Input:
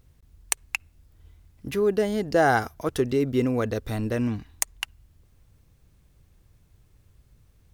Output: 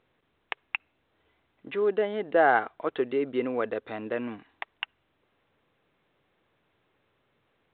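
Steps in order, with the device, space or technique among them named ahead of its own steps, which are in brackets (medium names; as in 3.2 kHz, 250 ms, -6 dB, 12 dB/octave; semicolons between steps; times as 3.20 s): telephone (band-pass 390–3000 Hz; µ-law 64 kbps 8 kHz)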